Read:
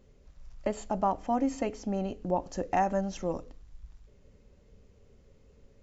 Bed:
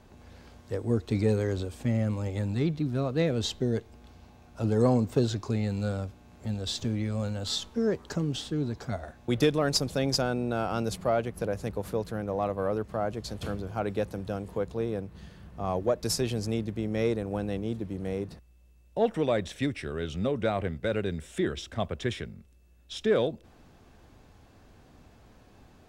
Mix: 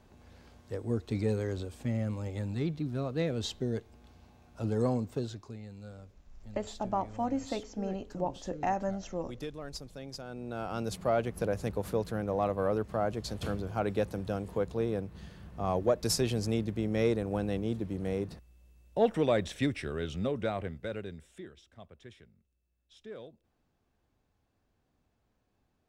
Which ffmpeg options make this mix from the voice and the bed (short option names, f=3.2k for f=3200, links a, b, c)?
-filter_complex "[0:a]adelay=5900,volume=-4dB[a];[1:a]volume=11dB,afade=t=out:st=4.73:d=0.85:silence=0.266073,afade=t=in:st=10.23:d=1.1:silence=0.158489,afade=t=out:st=19.7:d=1.8:silence=0.1[b];[a][b]amix=inputs=2:normalize=0"